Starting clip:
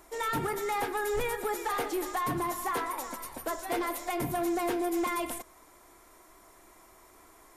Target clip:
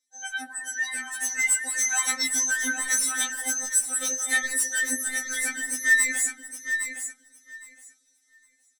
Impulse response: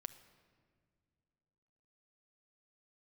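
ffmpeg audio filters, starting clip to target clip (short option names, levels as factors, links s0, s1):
-af "afftdn=nr=28:nf=-42,highshelf=f=4000:g=11,aecho=1:1:2.9:0.86,dynaudnorm=f=190:g=9:m=4.47,asetrate=37926,aresample=44100,bandpass=f=4700:t=q:w=1.1:csg=0,asoftclip=type=tanh:threshold=0.075,aecho=1:1:812|1624|2436:0.398|0.0637|0.0102,afftfilt=real='re*3.46*eq(mod(b,12),0)':imag='im*3.46*eq(mod(b,12),0)':win_size=2048:overlap=0.75,volume=2.24"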